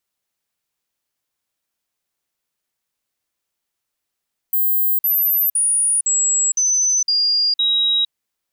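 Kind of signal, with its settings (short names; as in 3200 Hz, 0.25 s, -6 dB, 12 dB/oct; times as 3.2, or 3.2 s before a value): stepped sine 15300 Hz down, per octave 3, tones 7, 0.46 s, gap 0.05 s -14 dBFS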